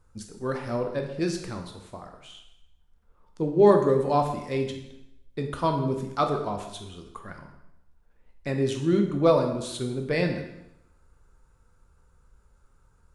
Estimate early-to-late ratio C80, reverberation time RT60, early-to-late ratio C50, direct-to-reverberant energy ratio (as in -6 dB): 9.0 dB, 0.85 s, 7.0 dB, 3.5 dB